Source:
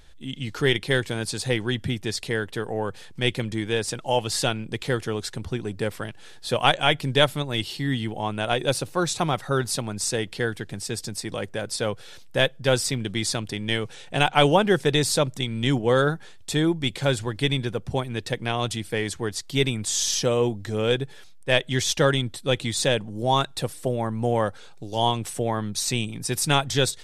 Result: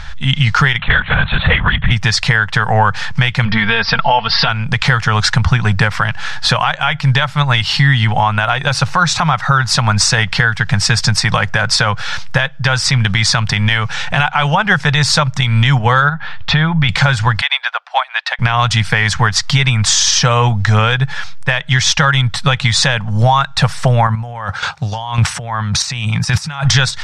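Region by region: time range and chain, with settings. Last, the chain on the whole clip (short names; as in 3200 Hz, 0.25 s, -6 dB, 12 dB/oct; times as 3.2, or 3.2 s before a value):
0.78–1.91 de-esser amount 30% + LPC vocoder at 8 kHz whisper
3.45–4.49 steep low-pass 5100 Hz 72 dB/oct + comb 4.4 ms, depth 71%
16.09–16.89 LPF 3900 Hz 24 dB/oct + compressor 3:1, threshold -29 dBFS
17.41–18.39 elliptic high-pass 650 Hz, stop band 80 dB + resonant high shelf 5000 Hz -7.5 dB, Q 1.5 + upward expander, over -48 dBFS
24.07–26.65 HPF 46 Hz + negative-ratio compressor -33 dBFS + chopper 1.8 Hz, depth 65%, duty 15%
whole clip: EQ curve 160 Hz 0 dB, 330 Hz -25 dB, 860 Hz +2 dB, 1400 Hz +6 dB, 3600 Hz -4 dB, 5500 Hz -2 dB, 12000 Hz -24 dB; compressor 6:1, threshold -32 dBFS; maximiser +25.5 dB; gain -1 dB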